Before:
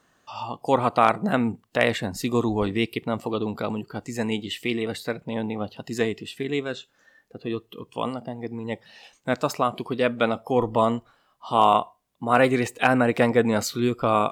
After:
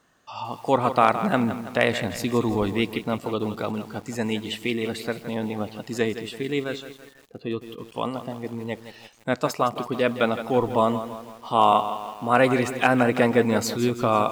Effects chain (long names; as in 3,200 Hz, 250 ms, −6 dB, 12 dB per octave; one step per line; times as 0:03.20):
feedback echo at a low word length 165 ms, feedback 55%, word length 7 bits, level −11 dB